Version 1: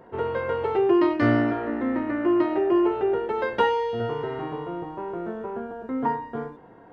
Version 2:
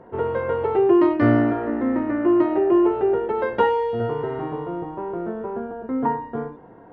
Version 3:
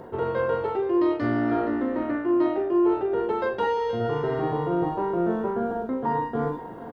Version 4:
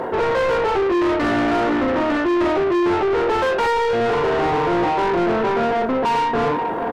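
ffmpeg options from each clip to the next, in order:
ffmpeg -i in.wav -af "lowpass=frequency=1300:poles=1,volume=4dB" out.wav
ffmpeg -i in.wav -af "areverse,acompressor=threshold=-29dB:ratio=6,areverse,aexciter=amount=3.4:drive=5.8:freq=3400,aecho=1:1:40|472:0.447|0.168,volume=6dB" out.wav
ffmpeg -i in.wav -filter_complex "[0:a]asplit=2[link_01][link_02];[link_02]highpass=frequency=720:poles=1,volume=29dB,asoftclip=type=tanh:threshold=-12dB[link_03];[link_01][link_03]amix=inputs=2:normalize=0,lowpass=frequency=2200:poles=1,volume=-6dB" out.wav

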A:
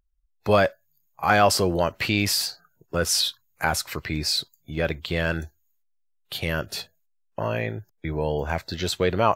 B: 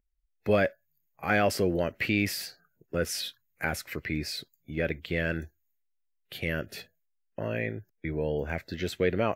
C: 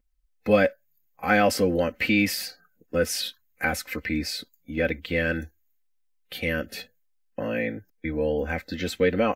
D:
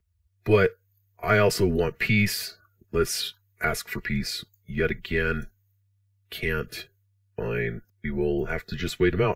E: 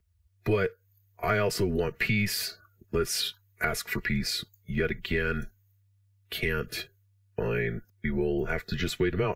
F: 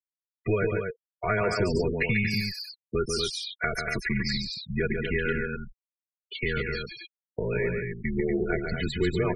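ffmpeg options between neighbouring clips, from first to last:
ffmpeg -i in.wav -af "equalizer=frequency=250:width_type=o:width=1:gain=5,equalizer=frequency=500:width_type=o:width=1:gain=4,equalizer=frequency=1000:width_type=o:width=1:gain=-11,equalizer=frequency=2000:width_type=o:width=1:gain=9,equalizer=frequency=4000:width_type=o:width=1:gain=-6,equalizer=frequency=8000:width_type=o:width=1:gain=-5,volume=-6.5dB" out.wav
ffmpeg -i in.wav -af "aecho=1:1:3.9:0.8,volume=2.5dB" out.wav
ffmpeg -i in.wav -af "afreqshift=-99" out.wav
ffmpeg -i in.wav -af "acompressor=threshold=-27dB:ratio=3,volume=2dB" out.wav
ffmpeg -i in.wav -af "afftfilt=real='re*gte(hypot(re,im),0.0447)':imag='im*gte(hypot(re,im),0.0447)':win_size=1024:overlap=0.75,aecho=1:1:142.9|239.1:0.562|0.501" out.wav

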